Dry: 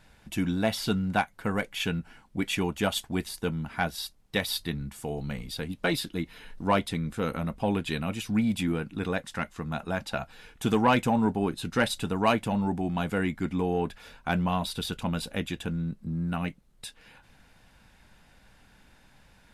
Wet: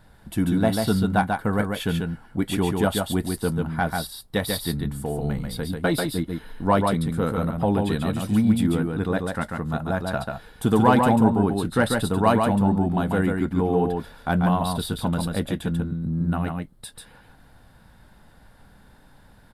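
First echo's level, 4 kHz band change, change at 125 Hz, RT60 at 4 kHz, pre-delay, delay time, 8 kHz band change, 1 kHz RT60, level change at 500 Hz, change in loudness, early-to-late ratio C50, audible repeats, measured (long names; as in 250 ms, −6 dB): −4.0 dB, +0.5 dB, +7.5 dB, no reverb audible, no reverb audible, 141 ms, +4.0 dB, no reverb audible, +6.5 dB, +6.0 dB, no reverb audible, 1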